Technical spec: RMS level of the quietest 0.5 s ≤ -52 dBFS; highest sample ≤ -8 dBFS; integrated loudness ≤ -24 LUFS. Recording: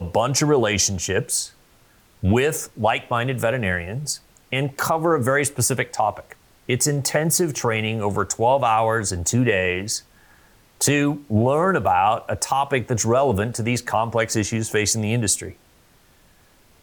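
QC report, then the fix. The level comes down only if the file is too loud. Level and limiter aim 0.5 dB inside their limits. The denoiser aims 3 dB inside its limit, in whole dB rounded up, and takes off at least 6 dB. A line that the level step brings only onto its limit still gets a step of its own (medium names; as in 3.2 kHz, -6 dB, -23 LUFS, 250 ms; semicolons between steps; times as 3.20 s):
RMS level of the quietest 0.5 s -55 dBFS: pass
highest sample -7.5 dBFS: fail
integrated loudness -21.0 LUFS: fail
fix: trim -3.5 dB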